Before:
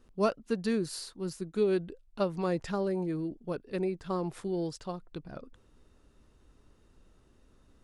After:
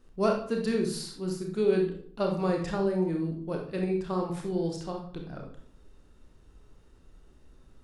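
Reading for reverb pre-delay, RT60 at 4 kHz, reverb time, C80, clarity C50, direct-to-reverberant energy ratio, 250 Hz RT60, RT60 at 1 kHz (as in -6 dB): 28 ms, 0.45 s, 0.60 s, 10.0 dB, 4.5 dB, 1.0 dB, 0.75 s, 0.60 s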